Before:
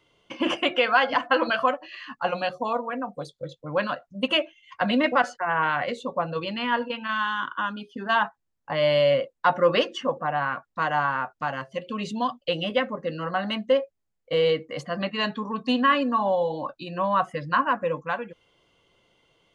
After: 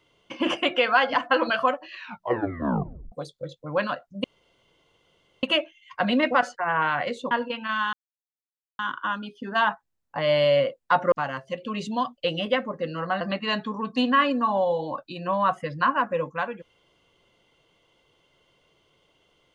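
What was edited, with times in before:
0:01.93: tape stop 1.19 s
0:04.24: splice in room tone 1.19 s
0:06.12–0:06.71: remove
0:07.33: splice in silence 0.86 s
0:09.66–0:11.36: remove
0:13.45–0:14.92: remove

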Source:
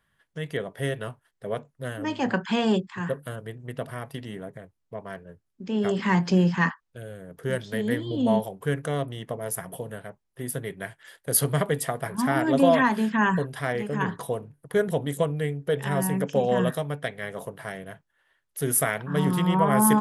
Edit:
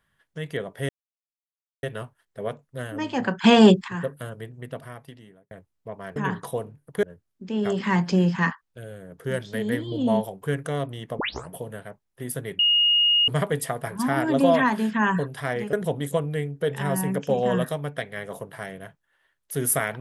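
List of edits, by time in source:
0:00.89: splice in silence 0.94 s
0:02.50–0:02.94: clip gain +9.5 dB
0:03.52–0:04.57: fade out
0:09.38: tape start 0.31 s
0:10.78–0:11.47: beep over 2,860 Hz −16 dBFS
0:13.92–0:14.79: move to 0:05.22

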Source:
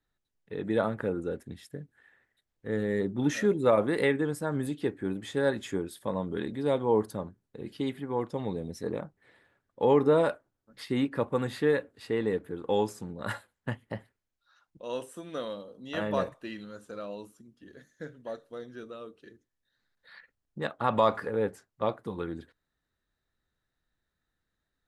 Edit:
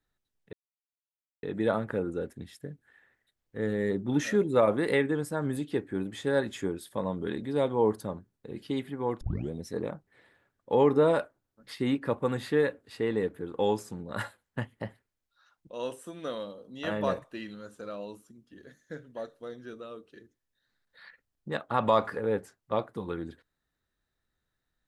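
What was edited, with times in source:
0:00.53: splice in silence 0.90 s
0:08.31: tape start 0.30 s

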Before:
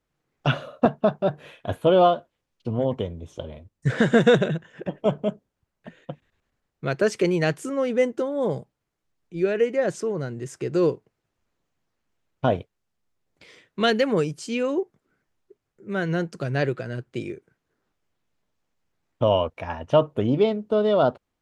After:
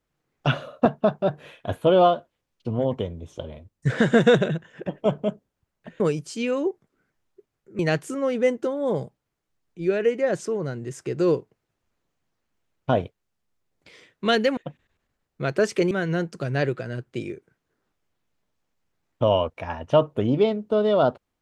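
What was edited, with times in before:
0:06.00–0:07.34: swap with 0:14.12–0:15.91

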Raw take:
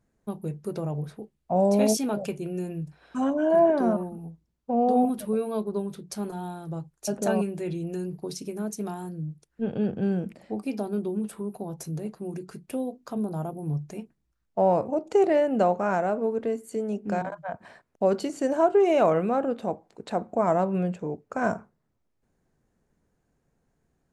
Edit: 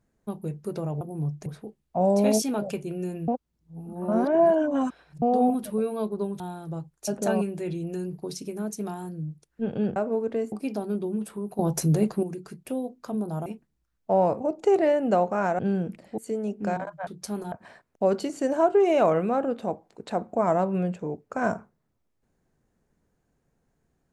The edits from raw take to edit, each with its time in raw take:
0:02.83–0:04.77: reverse
0:05.95–0:06.40: move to 0:17.52
0:09.96–0:10.55: swap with 0:16.07–0:16.63
0:11.62–0:12.26: clip gain +11 dB
0:13.49–0:13.94: move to 0:01.01

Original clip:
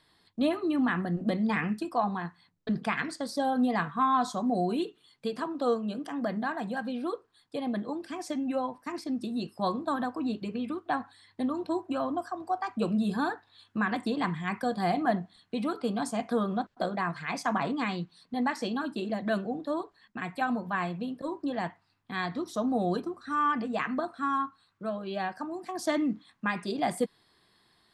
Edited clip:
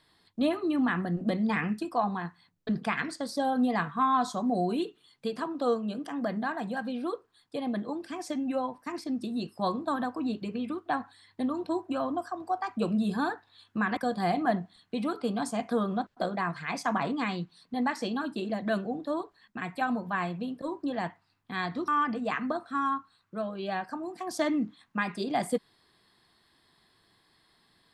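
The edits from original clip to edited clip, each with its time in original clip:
0:13.97–0:14.57: remove
0:22.48–0:23.36: remove

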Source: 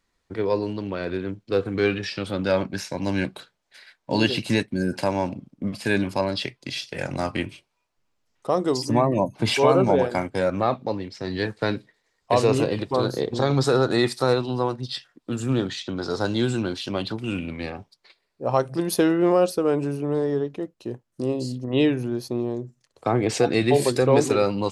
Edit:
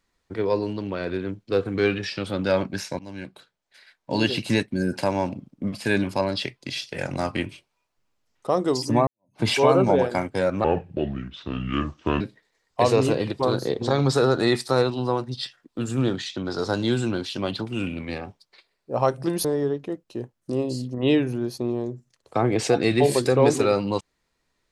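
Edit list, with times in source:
0:02.99–0:04.51: fade in, from −16.5 dB
0:09.07–0:09.39: fade in exponential
0:10.64–0:11.72: play speed 69%
0:18.96–0:20.15: remove

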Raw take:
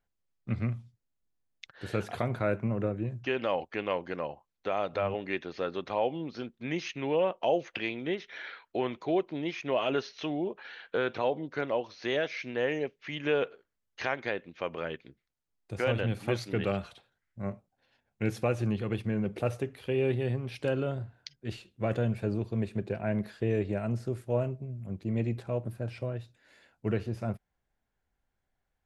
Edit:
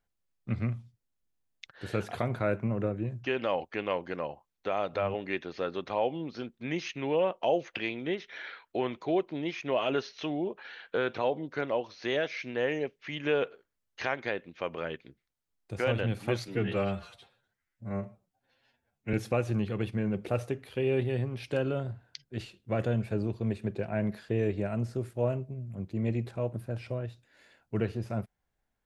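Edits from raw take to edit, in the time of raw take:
0:16.48–0:18.25: time-stretch 1.5×

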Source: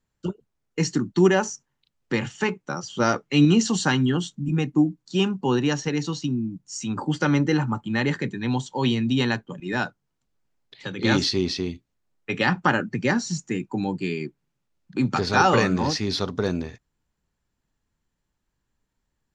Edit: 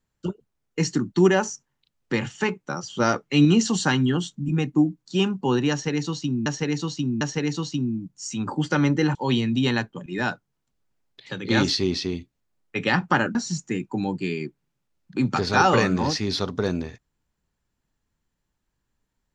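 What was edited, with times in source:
0:05.71–0:06.46: repeat, 3 plays
0:07.65–0:08.69: remove
0:12.89–0:13.15: remove

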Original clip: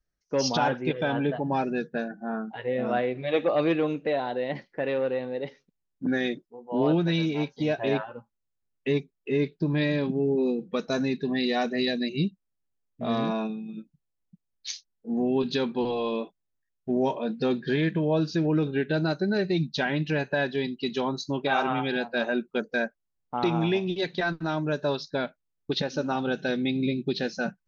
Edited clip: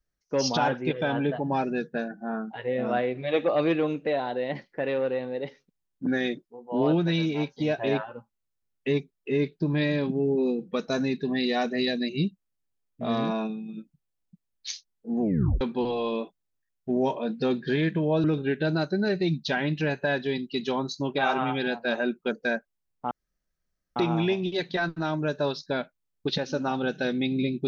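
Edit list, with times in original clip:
0:15.21: tape stop 0.40 s
0:18.24–0:18.53: remove
0:23.40: splice in room tone 0.85 s

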